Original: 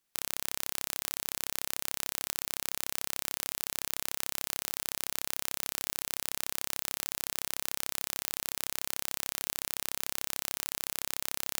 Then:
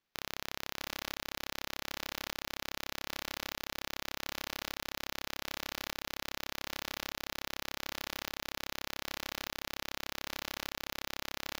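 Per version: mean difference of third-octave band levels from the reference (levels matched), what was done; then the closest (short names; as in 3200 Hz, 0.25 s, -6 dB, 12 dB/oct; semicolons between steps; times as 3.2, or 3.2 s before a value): 6.0 dB: running mean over 5 samples; on a send: echo 0.651 s -7.5 dB; on the sum: gain +1 dB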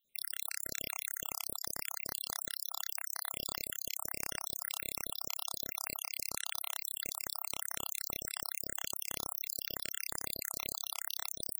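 14.0 dB: random spectral dropouts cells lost 74%; in parallel at -2 dB: limiter -22 dBFS, peak gain reduction 9 dB; on the sum: gain -1 dB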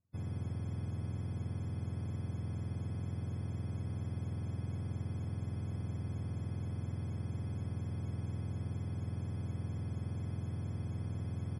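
19.5 dB: spectrum mirrored in octaves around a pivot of 470 Hz; on a send: echo 0.149 s -19 dB; on the sum: gain +1.5 dB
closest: first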